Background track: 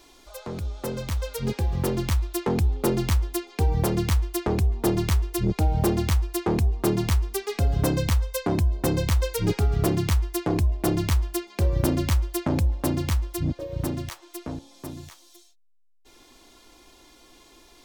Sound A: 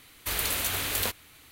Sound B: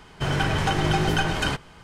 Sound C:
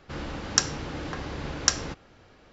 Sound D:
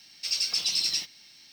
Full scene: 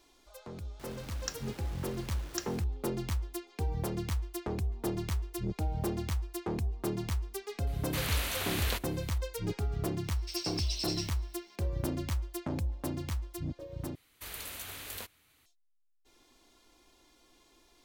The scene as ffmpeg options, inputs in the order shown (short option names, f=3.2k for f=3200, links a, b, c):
-filter_complex "[1:a]asplit=2[a][b];[0:a]volume=-11dB[c];[3:a]acrusher=bits=5:mix=0:aa=0.000001[d];[a]acrossover=split=5800[e][f];[f]acompressor=threshold=-34dB:ratio=4:attack=1:release=60[g];[e][g]amix=inputs=2:normalize=0[h];[c]asplit=2[i][j];[i]atrim=end=13.954[k];[b]atrim=end=1.51,asetpts=PTS-STARTPTS,volume=-13.5dB[l];[j]atrim=start=15.456[m];[d]atrim=end=2.52,asetpts=PTS-STARTPTS,volume=-16dB,afade=t=in:d=0.004:c=hsin,afade=t=out:st=2.516:d=0.004:c=hsin,adelay=700[n];[h]atrim=end=1.51,asetpts=PTS-STARTPTS,volume=-3.5dB,afade=t=in:d=0.004:c=hsin,afade=t=out:st=1.506:d=0.004:c=hsin,adelay=7670[o];[4:a]atrim=end=1.52,asetpts=PTS-STARTPTS,volume=-10.5dB,afade=t=in:d=0.004:c=hsin,afade=t=out:st=1.516:d=0.004:c=hsin,adelay=10040[p];[k][l]acrossfade=d=0.004:c1=hsin:c2=hsin[q];[q][m]acrossfade=d=0.004:c1=hsin:c2=hsin[r];[r][n][o][p]amix=inputs=4:normalize=0"